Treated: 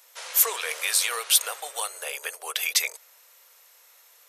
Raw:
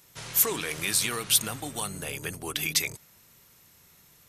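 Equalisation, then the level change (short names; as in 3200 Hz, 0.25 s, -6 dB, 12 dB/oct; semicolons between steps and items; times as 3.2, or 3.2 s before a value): elliptic high-pass 490 Hz, stop band 50 dB; +3.5 dB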